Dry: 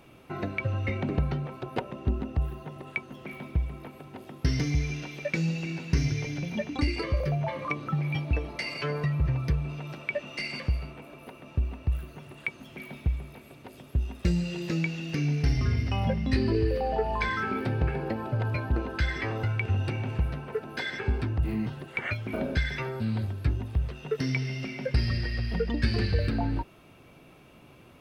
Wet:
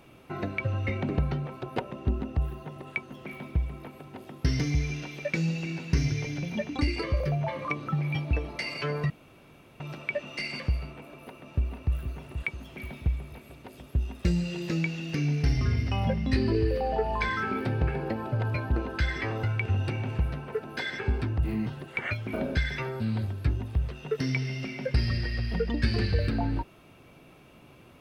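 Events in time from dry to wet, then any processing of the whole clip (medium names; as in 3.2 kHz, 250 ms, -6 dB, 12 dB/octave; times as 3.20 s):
9.10–9.80 s: room tone
11.05–11.94 s: echo throw 480 ms, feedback 50%, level -8.5 dB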